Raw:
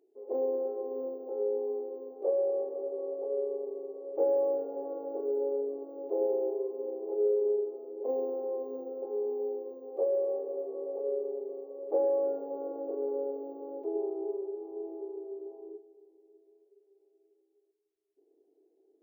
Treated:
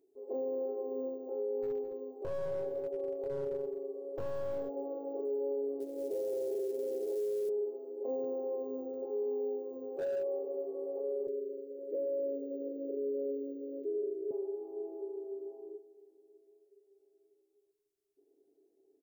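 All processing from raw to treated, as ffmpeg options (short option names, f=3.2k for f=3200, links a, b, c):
-filter_complex "[0:a]asettb=1/sr,asplit=3[a][b][c];[a]atrim=end=1.624[d];[b]atrim=start=1.62:end=4.69,asetpts=PTS-STARTPTS,afade=t=in:d=0.004:c=qsin,afade=t=out:st=3.066:d=0.004:c=qsin,aeval=exprs='clip(val(0),-1,0.0335)':c=same,aecho=1:1:212:0.2,atrim=end_sample=135387[e];[c]atrim=start=4.686[f];[d][e]acrossfade=d=0.004:c1=hsin:c2=qsin[g];[g][f]acrossfade=d=0.004:c1=qsin:c2=hsin,asettb=1/sr,asplit=3[h][i][j];[h]atrim=end=5.804[k];[i]atrim=start=5.8:end=7.49,asetpts=PTS-STARTPTS,afade=t=in:d=0.004:c=qsin,afade=t=out:st=1.686:d=0.004:c=qsin,lowpass=f=520:t=q:w=1.8,acrusher=bits=7:mode=log:mix=0:aa=0.000001[l];[j]atrim=start=7.486[m];[k][l]acrossfade=d=0.004:c1=hsin:c2=qsin[n];[n][m]acrossfade=d=0.004:c1=qsin:c2=hsin,asettb=1/sr,asplit=3[o][p][q];[o]atrim=end=8.244[r];[p]atrim=start=8.24:end=10.24,asetpts=PTS-STARTPTS,afade=t=in:d=0.004:c=qsin,afade=t=out:st=1.996:d=0.004:c=qsin,acompressor=mode=upward:threshold=-35dB:ratio=2.5:attack=3.2:release=140:knee=2.83:detection=peak,aecho=1:1:702:0.0891,atrim=end_sample=88200,asoftclip=type=hard:threshold=-25.5dB[s];[q]atrim=start=10.236[t];[r][s]acrossfade=d=0.004:c1=hsin:c2=qsin[u];[u][t]acrossfade=d=0.004:c1=qsin:c2=hsin,asettb=1/sr,asplit=3[v][w][x];[v]atrim=end=11.274[y];[w]atrim=start=11.27:end=14.31,asetpts=PTS-STARTPTS,afade=t=in:d=0.004:c=qsin,afade=t=out:st=3.036:d=0.004:c=qsin,acompressor=mode=upward:threshold=-52dB:ratio=2.5:attack=3.2:release=140:knee=2.83:detection=peak,asuperstop=centerf=990:order=12:qfactor=0.85,asplit=2[z][aa];[aa]adelay=14,volume=-10dB[ab];[z][ab]amix=inputs=2:normalize=0,atrim=end_sample=134064[ac];[x]atrim=start=14.306[ad];[y][ac]acrossfade=d=0.004:c1=hsin:c2=qsin[ae];[ae][ad]acrossfade=d=0.004:c1=qsin:c2=hsin,bass=f=250:g=12,treble=f=4k:g=7,aecho=1:1:7.4:0.37,alimiter=limit=-24dB:level=0:latency=1:release=22,volume=-5dB"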